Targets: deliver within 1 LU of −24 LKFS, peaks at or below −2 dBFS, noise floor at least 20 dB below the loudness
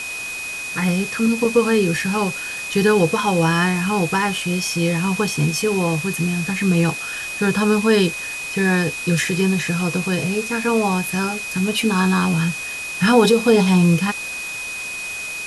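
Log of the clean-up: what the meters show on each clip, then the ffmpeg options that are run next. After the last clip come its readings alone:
interfering tone 2,500 Hz; level of the tone −27 dBFS; background noise floor −29 dBFS; target noise floor −39 dBFS; integrated loudness −19.0 LKFS; sample peak −2.0 dBFS; target loudness −24.0 LKFS
→ -af "bandreject=frequency=2500:width=30"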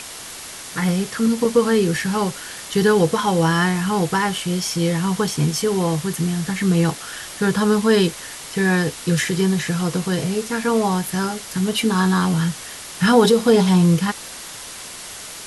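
interfering tone none found; background noise floor −35 dBFS; target noise floor −40 dBFS
→ -af "afftdn=noise_reduction=6:noise_floor=-35"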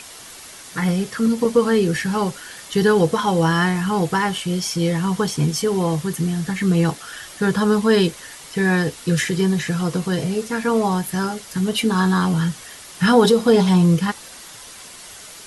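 background noise floor −40 dBFS; integrated loudness −19.5 LKFS; sample peak −2.0 dBFS; target loudness −24.0 LKFS
→ -af "volume=-4.5dB"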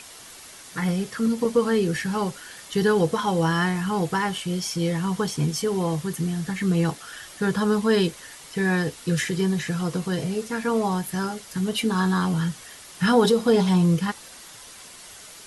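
integrated loudness −24.0 LKFS; sample peak −6.5 dBFS; background noise floor −44 dBFS

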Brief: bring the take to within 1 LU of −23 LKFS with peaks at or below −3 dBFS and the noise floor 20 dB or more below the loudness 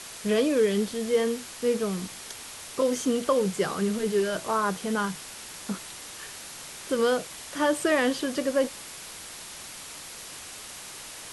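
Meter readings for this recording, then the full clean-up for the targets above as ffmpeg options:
background noise floor −42 dBFS; target noise floor −47 dBFS; integrated loudness −27.0 LKFS; sample peak −12.0 dBFS; target loudness −23.0 LKFS
→ -af "afftdn=noise_reduction=6:noise_floor=-42"
-af "volume=4dB"

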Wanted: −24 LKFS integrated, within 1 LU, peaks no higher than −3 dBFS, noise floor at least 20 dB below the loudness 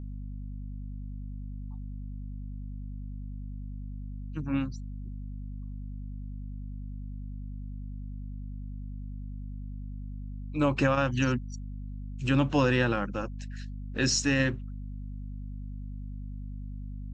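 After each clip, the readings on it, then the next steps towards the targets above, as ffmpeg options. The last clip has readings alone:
mains hum 50 Hz; hum harmonics up to 250 Hz; level of the hum −35 dBFS; integrated loudness −33.5 LKFS; sample peak −11.5 dBFS; target loudness −24.0 LKFS
→ -af "bandreject=frequency=50:width_type=h:width=6,bandreject=frequency=100:width_type=h:width=6,bandreject=frequency=150:width_type=h:width=6,bandreject=frequency=200:width_type=h:width=6,bandreject=frequency=250:width_type=h:width=6"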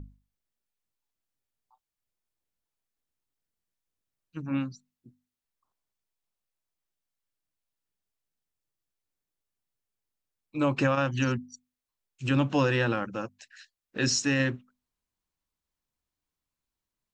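mains hum none found; integrated loudness −28.0 LKFS; sample peak −12.0 dBFS; target loudness −24.0 LKFS
→ -af "volume=4dB"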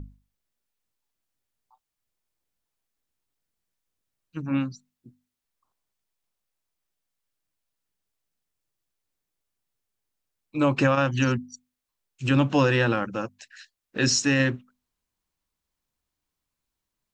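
integrated loudness −24.0 LKFS; sample peak −8.0 dBFS; background noise floor −85 dBFS

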